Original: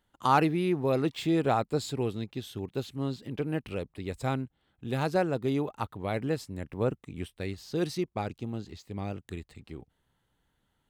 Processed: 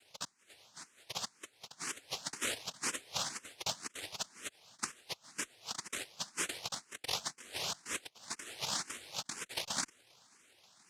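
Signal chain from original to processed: 3.05–3.66 s: comb 5.1 ms, depth 84%; compressor with a negative ratio -43 dBFS, ratio -0.5; noise-vocoded speech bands 1; barber-pole phaser +2 Hz; trim +3.5 dB

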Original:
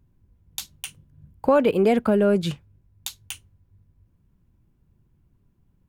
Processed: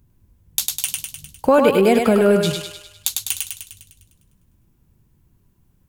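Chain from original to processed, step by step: treble shelf 4.8 kHz +11 dB; thinning echo 101 ms, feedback 57%, high-pass 470 Hz, level -3 dB; trim +3.5 dB

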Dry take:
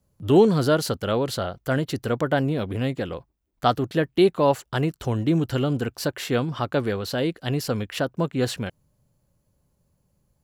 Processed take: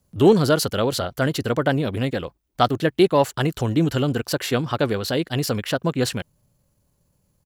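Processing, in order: treble shelf 2.1 kHz +4.5 dB; tempo 1.4×; in parallel at -11.5 dB: one-sided clip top -12 dBFS

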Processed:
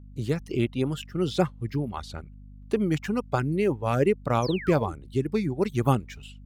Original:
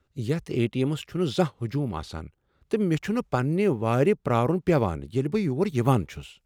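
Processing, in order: gate with hold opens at -50 dBFS; reverb removal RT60 1.2 s; hum 50 Hz, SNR 19 dB; painted sound fall, 4.42–4.93 s, 280–6400 Hz -39 dBFS

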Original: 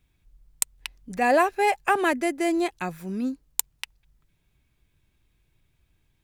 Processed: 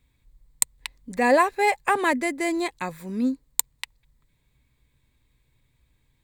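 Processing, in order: rippled EQ curve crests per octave 1, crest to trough 7 dB; trim +1 dB

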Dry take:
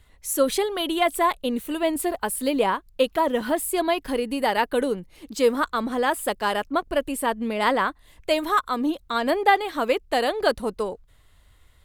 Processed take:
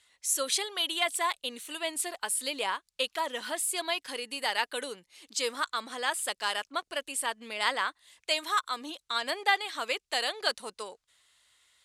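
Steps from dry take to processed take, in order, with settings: frequency weighting ITU-R 468; trim -8.5 dB

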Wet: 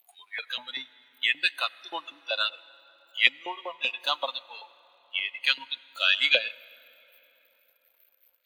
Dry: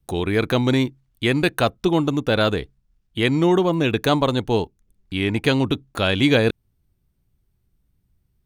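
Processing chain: jump at every zero crossing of -20.5 dBFS; spectral noise reduction 26 dB; dynamic bell 8.1 kHz, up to +5 dB, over -54 dBFS, Q 5; LFO high-pass saw up 5.2 Hz 630–2100 Hz; high-order bell 3.1 kHz +11 dB 1.3 oct; reverberation RT60 4.1 s, pre-delay 74 ms, DRR 14 dB; upward expansion 1.5:1, over -28 dBFS; trim -10 dB

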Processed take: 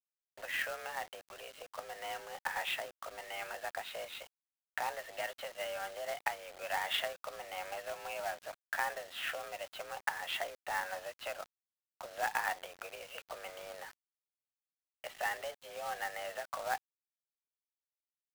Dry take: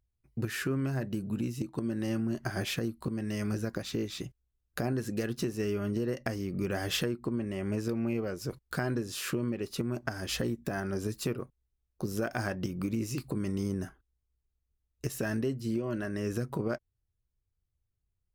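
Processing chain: mistuned SSB +170 Hz 530–3200 Hz; companded quantiser 4-bit; trim +1.5 dB

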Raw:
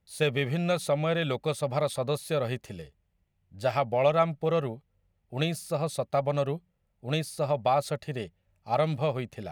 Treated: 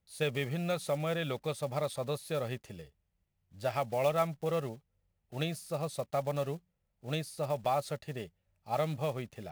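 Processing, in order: block-companded coder 5-bit; trim -6 dB

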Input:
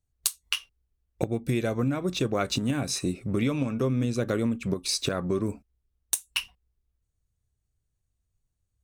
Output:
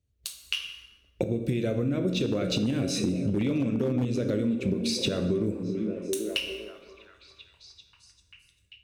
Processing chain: peak limiter -19 dBFS, peak gain reduction 10 dB; FFT filter 570 Hz 0 dB, 810 Hz -14 dB, 3 kHz -4 dB, 9.5 kHz -20 dB; plate-style reverb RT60 1.1 s, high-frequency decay 0.75×, DRR 6 dB; 2.14–4.24 s: hard clipper -21 dBFS, distortion -24 dB; high-pass 52 Hz; repeats whose band climbs or falls 393 ms, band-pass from 240 Hz, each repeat 0.7 oct, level -8 dB; level rider gain up to 5.5 dB; treble shelf 4.7 kHz +11 dB; compression 4:1, threshold -31 dBFS, peak gain reduction 12 dB; trim +5.5 dB

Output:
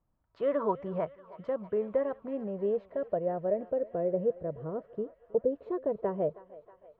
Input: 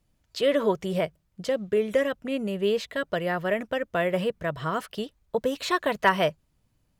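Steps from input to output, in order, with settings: low-pass sweep 1.1 kHz -> 480 Hz, 1.46–3.98 s; thinning echo 318 ms, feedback 82%, high-pass 660 Hz, level -16 dB; trim -8 dB

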